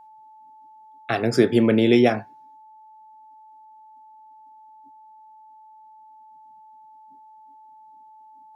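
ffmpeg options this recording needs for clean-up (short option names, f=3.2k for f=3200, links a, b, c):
-af "bandreject=f=870:w=30"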